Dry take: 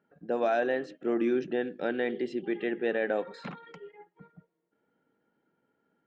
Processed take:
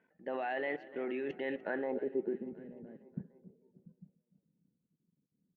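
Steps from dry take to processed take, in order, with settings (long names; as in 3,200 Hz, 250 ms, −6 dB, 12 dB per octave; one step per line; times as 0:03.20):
output level in coarse steps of 19 dB
low-pass filter sweep 2,200 Hz → 150 Hz, 0:01.70–0:02.78
on a send: repeating echo 321 ms, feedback 60%, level −18.5 dB
on the sum: wrong playback speed 44.1 kHz file played as 48 kHz
level +1 dB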